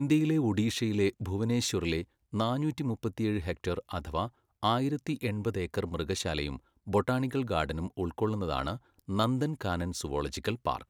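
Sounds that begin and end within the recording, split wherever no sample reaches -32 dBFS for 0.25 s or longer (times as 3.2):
2.34–4.26
4.63–6.56
6.88–8.75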